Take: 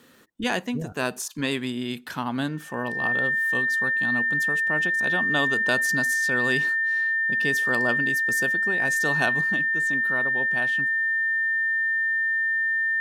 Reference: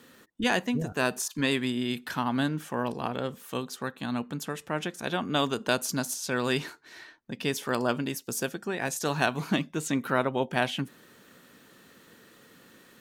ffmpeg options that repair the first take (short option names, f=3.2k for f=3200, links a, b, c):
-af "bandreject=f=1.8k:w=30,asetnsamples=n=441:p=0,asendcmd='9.41 volume volume 7dB',volume=0dB"